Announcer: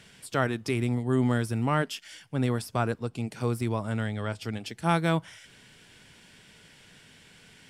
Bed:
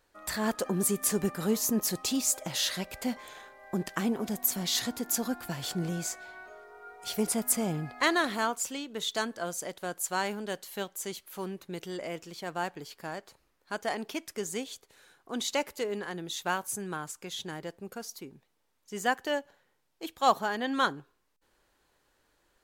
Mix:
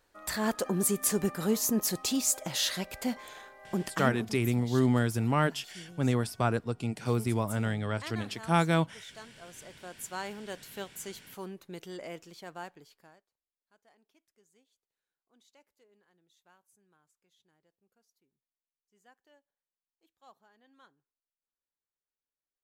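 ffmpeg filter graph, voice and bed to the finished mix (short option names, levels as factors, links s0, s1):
-filter_complex "[0:a]adelay=3650,volume=0.944[s0];[1:a]volume=4.22,afade=t=out:st=3.87:d=0.5:silence=0.141254,afade=t=in:st=9.37:d=1.25:silence=0.237137,afade=t=out:st=12.12:d=1.14:silence=0.0354813[s1];[s0][s1]amix=inputs=2:normalize=0"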